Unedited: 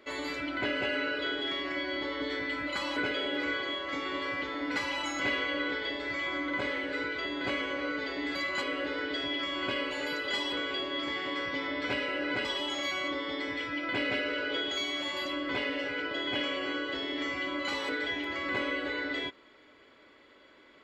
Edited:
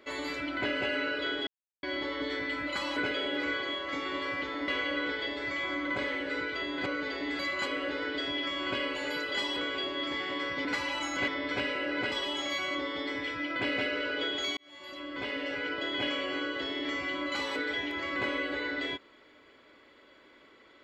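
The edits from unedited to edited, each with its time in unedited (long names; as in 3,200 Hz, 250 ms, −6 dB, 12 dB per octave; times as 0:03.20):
0:01.47–0:01.83: silence
0:04.68–0:05.31: move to 0:11.61
0:07.49–0:07.82: remove
0:14.90–0:15.93: fade in linear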